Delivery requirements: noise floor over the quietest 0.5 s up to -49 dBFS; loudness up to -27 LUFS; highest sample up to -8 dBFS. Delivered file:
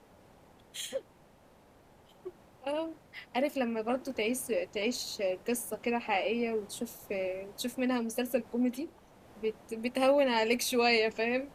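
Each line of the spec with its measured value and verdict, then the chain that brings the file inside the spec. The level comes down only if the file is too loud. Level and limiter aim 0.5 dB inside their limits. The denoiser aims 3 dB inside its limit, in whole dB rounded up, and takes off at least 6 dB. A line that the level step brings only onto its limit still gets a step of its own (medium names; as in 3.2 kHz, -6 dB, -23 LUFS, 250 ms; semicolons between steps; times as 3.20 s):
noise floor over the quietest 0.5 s -60 dBFS: pass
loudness -32.0 LUFS: pass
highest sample -14.0 dBFS: pass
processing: none needed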